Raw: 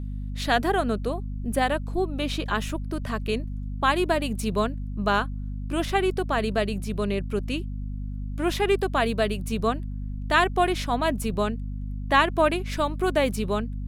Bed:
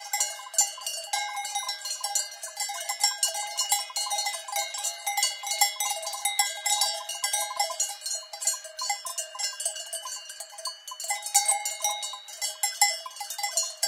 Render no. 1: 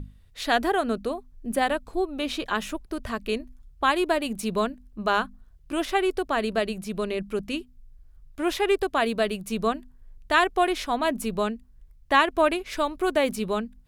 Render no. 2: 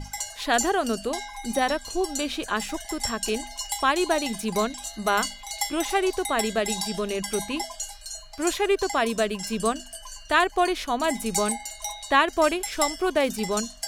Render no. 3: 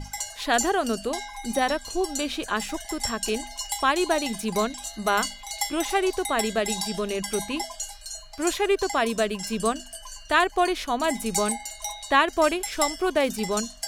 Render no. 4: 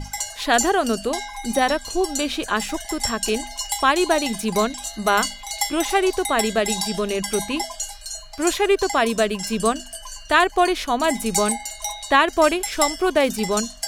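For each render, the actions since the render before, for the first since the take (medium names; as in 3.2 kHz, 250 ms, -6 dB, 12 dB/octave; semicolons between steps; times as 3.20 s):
hum notches 50/100/150/200/250 Hz
add bed -5.5 dB
no audible change
trim +4.5 dB; peak limiter -3 dBFS, peak gain reduction 1.5 dB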